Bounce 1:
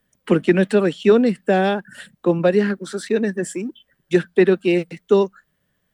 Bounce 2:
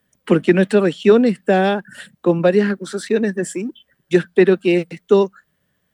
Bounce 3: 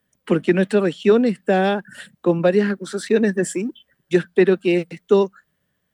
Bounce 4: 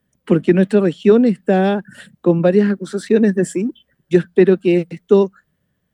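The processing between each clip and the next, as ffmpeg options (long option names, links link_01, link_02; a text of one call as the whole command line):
ffmpeg -i in.wav -af "highpass=44,volume=2dB" out.wav
ffmpeg -i in.wav -af "dynaudnorm=framelen=110:gausssize=9:maxgain=11.5dB,volume=-4dB" out.wav
ffmpeg -i in.wav -af "lowshelf=frequency=470:gain=9,volume=-2dB" out.wav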